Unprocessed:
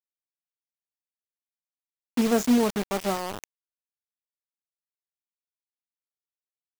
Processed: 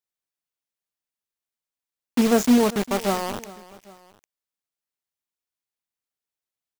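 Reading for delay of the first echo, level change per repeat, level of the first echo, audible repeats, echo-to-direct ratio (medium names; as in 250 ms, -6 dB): 401 ms, -5.5 dB, -19.0 dB, 2, -18.0 dB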